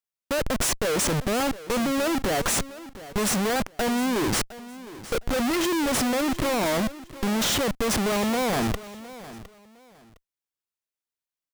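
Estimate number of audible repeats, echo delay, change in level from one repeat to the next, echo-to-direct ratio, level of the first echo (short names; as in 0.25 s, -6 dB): 2, 0.71 s, -12.5 dB, -16.0 dB, -16.5 dB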